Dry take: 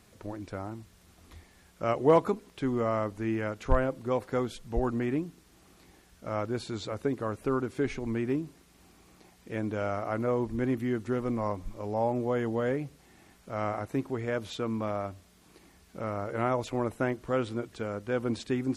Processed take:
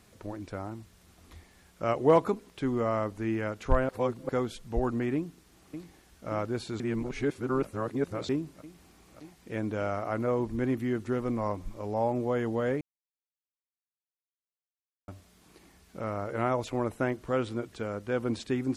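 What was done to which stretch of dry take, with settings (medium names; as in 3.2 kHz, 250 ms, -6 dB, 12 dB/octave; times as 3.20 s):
3.89–4.29 s: reverse
5.15–6.29 s: echo throw 580 ms, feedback 85%, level -9.5 dB
6.80–8.29 s: reverse
12.81–15.08 s: mute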